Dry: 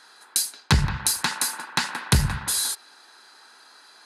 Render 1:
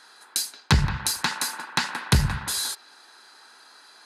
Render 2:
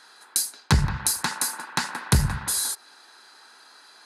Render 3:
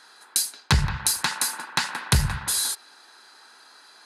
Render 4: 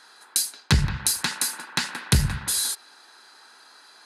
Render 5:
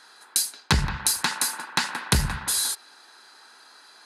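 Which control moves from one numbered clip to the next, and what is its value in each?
dynamic bell, frequency: 10 kHz, 3 kHz, 270 Hz, 930 Hz, 110 Hz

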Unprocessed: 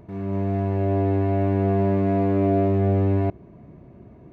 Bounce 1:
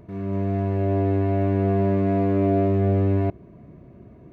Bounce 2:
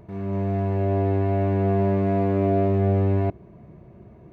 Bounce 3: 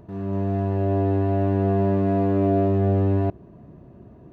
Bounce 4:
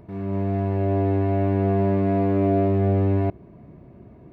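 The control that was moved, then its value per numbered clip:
band-stop, frequency: 840 Hz, 270 Hz, 2.2 kHz, 6.5 kHz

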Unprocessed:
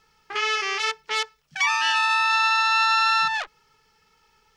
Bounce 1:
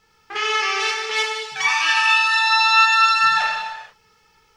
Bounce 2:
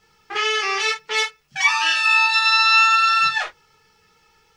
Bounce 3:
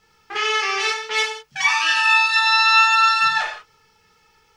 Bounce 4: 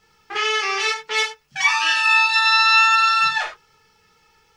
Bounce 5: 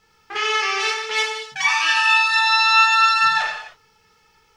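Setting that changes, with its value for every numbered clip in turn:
gated-style reverb, gate: 510 ms, 90 ms, 210 ms, 130 ms, 330 ms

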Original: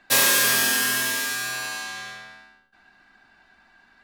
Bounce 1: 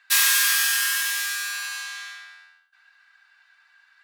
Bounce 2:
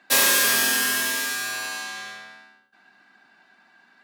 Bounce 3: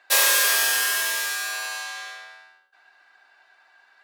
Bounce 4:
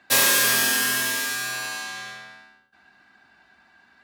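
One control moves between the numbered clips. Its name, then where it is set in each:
high-pass, cutoff frequency: 1.2 kHz, 160 Hz, 470 Hz, 60 Hz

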